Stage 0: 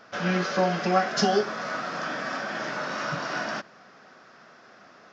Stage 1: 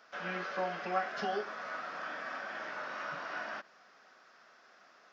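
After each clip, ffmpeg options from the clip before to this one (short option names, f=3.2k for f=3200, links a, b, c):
-filter_complex "[0:a]highpass=f=750:p=1,acrossover=split=3200[a][b];[b]acompressor=threshold=-55dB:ratio=4:attack=1:release=60[c];[a][c]amix=inputs=2:normalize=0,volume=-7dB"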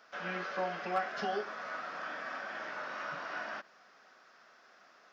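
-af "asoftclip=type=hard:threshold=-22dB"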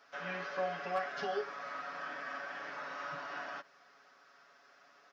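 -af "aecho=1:1:7.1:0.68,volume=-3.5dB"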